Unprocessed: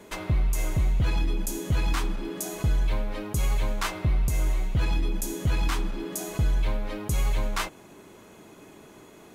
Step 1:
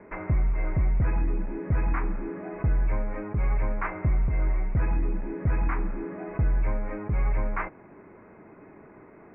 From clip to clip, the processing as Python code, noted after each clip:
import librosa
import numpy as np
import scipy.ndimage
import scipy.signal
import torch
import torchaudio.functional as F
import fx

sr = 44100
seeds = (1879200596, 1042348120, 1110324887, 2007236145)

y = scipy.signal.sosfilt(scipy.signal.butter(12, 2300.0, 'lowpass', fs=sr, output='sos'), x)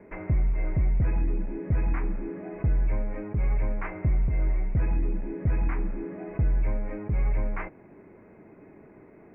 y = fx.peak_eq(x, sr, hz=1200.0, db=-8.0, octaves=1.2)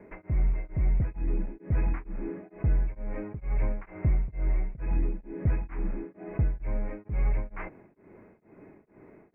y = x * np.abs(np.cos(np.pi * 2.2 * np.arange(len(x)) / sr))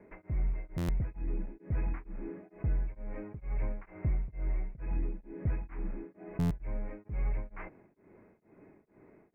y = fx.buffer_glitch(x, sr, at_s=(0.77, 6.39), block=512, repeats=9)
y = y * 10.0 ** (-6.0 / 20.0)